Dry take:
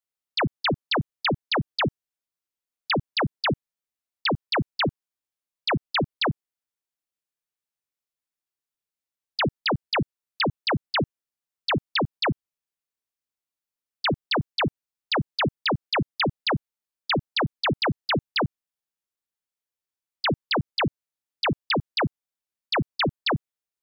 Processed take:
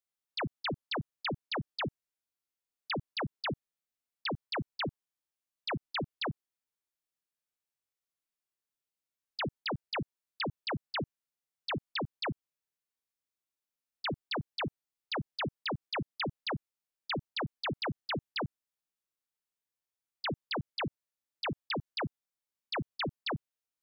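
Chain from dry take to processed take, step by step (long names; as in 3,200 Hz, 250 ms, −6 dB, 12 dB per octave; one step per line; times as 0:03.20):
harmonic and percussive parts rebalanced percussive −12 dB
level +1 dB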